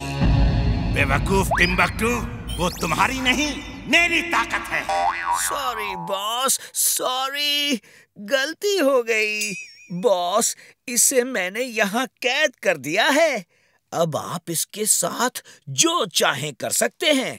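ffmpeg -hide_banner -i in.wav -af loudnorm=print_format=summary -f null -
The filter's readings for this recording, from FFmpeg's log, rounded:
Input Integrated:    -20.5 LUFS
Input True Peak:      -1.2 dBTP
Input LRA:             1.2 LU
Input Threshold:     -30.7 LUFS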